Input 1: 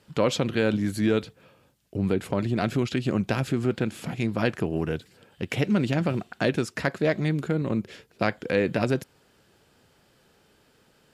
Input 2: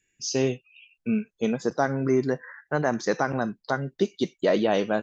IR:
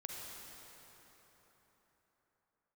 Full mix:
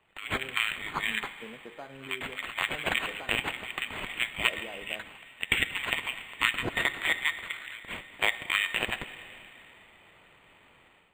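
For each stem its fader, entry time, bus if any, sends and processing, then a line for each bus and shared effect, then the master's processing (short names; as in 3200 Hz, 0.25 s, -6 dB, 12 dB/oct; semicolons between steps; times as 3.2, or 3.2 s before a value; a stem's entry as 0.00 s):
-0.5 dB, 0.00 s, send -5 dB, FFT band-pass 1800–6000 Hz; AGC gain up to 11 dB
-11.0 dB, 0.00 s, muted 3.31–4.33, no send, running mean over 7 samples; compressor, threshold -24 dBFS, peak gain reduction 7 dB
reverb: on, RT60 4.3 s, pre-delay 38 ms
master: low shelf 380 Hz -9.5 dB; de-hum 52.32 Hz, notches 36; decimation joined by straight lines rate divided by 8×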